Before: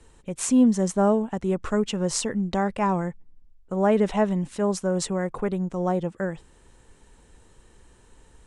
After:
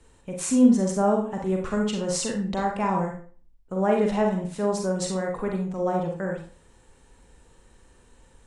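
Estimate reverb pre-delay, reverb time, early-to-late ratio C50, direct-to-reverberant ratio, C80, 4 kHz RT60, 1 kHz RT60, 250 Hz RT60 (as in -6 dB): 35 ms, 0.45 s, 5.0 dB, 1.0 dB, 10.5 dB, 0.35 s, 0.40 s, 0.40 s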